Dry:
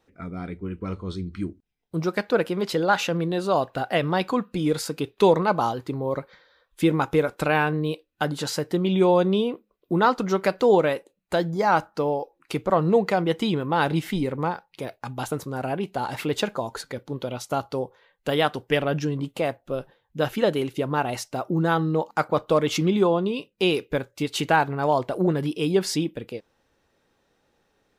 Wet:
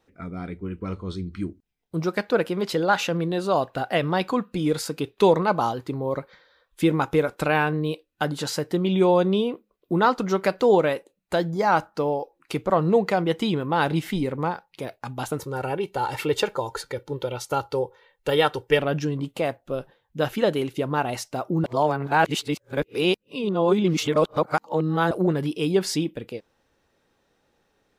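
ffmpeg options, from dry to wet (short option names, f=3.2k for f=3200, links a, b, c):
-filter_complex "[0:a]asettb=1/sr,asplit=3[a][b][c];[a]atrim=end=15.394[d];[b]atrim=start=15.39:end=18.79,asetpts=PTS-STARTPTS,afade=t=in:d=0.004:c=qsin,afade=t=out:st=3.396:d=0.004:c=qsin,aecho=1:1:2.2:0.65,atrim=end_sample=149940[e];[c]atrim=start=18.786[f];[d][e]acrossfade=d=0.004:c1=hsin:c2=qsin[g];[g][f]acrossfade=d=0.004:c1=qsin:c2=hsin,asplit=3[h][i][j];[h]atrim=end=21.642[k];[i]atrim=start=21.638:end=25.112,asetpts=PTS-STARTPTS,areverse[l];[j]atrim=start=25.108[m];[k][l]acrossfade=d=0.004:c1=hsin:c2=hsin[n];[n][m]acrossfade=d=0.004:c1=hsin:c2=hsin"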